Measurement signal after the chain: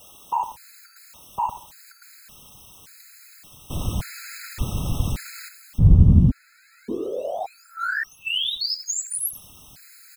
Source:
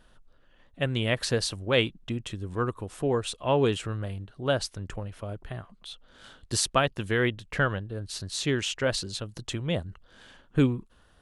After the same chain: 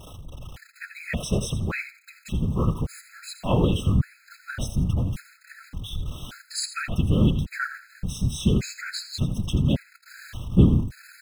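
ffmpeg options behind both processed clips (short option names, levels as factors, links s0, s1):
-filter_complex "[0:a]aeval=exprs='val(0)+0.5*0.0158*sgn(val(0))':c=same,asplit=2[s0][s1];[s1]aecho=0:1:83|166|249:0.251|0.0628|0.0157[s2];[s0][s2]amix=inputs=2:normalize=0,asubboost=boost=5.5:cutoff=170,afftfilt=real='hypot(re,im)*cos(2*PI*random(0))':imag='hypot(re,im)*sin(2*PI*random(1))':win_size=512:overlap=0.75,afftfilt=real='re*gt(sin(2*PI*0.87*pts/sr)*(1-2*mod(floor(b*sr/1024/1300),2)),0)':imag='im*gt(sin(2*PI*0.87*pts/sr)*(1-2*mod(floor(b*sr/1024/1300),2)),0)':win_size=1024:overlap=0.75,volume=1.88"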